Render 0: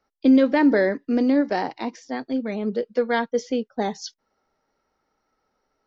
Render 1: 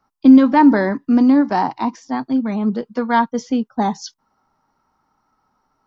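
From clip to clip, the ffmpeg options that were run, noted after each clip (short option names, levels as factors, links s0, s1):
-af "equalizer=f=125:t=o:w=1:g=7,equalizer=f=250:t=o:w=1:g=4,equalizer=f=500:t=o:w=1:g=-11,equalizer=f=1000:t=o:w=1:g=12,equalizer=f=2000:t=o:w=1:g=-6,equalizer=f=4000:t=o:w=1:g=-3,volume=1.68"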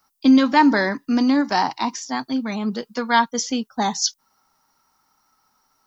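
-af "crystalizer=i=10:c=0,volume=0.501"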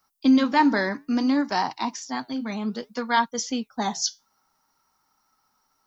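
-af "flanger=delay=1.7:depth=8.3:regen=-79:speed=0.61:shape=sinusoidal"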